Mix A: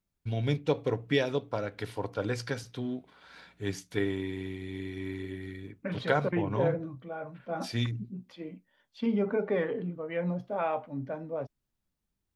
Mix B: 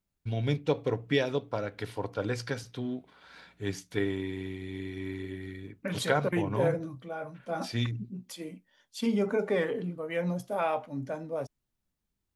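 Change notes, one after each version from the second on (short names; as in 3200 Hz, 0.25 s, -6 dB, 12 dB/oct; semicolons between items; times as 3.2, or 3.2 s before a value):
second voice: remove air absorption 310 m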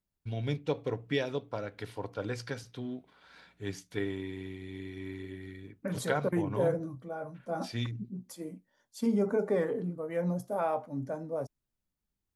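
first voice -4.0 dB; second voice: add bell 2900 Hz -14.5 dB 1.3 oct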